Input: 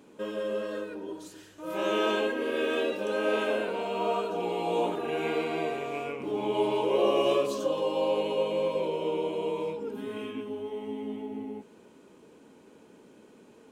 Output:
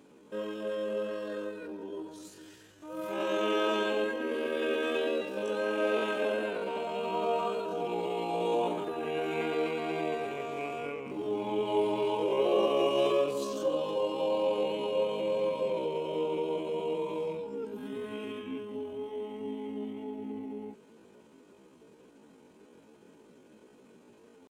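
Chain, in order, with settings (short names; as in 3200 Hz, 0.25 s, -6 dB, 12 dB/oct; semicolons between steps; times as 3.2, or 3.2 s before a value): tempo 0.56×; gain -2 dB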